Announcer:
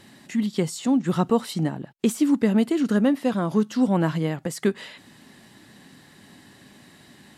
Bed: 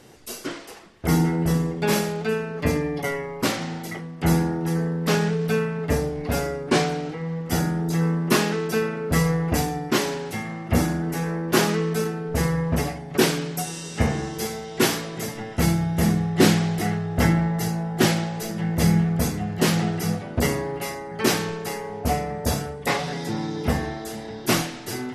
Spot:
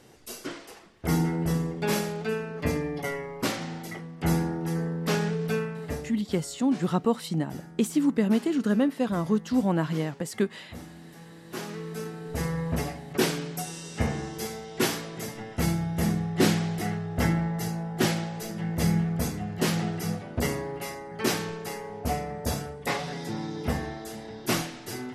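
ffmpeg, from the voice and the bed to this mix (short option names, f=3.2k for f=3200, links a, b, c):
-filter_complex "[0:a]adelay=5750,volume=-3.5dB[a];[1:a]volume=11.5dB,afade=t=out:st=5.52:d=0.73:silence=0.141254,afade=t=in:st=11.41:d=1.29:silence=0.149624[b];[a][b]amix=inputs=2:normalize=0"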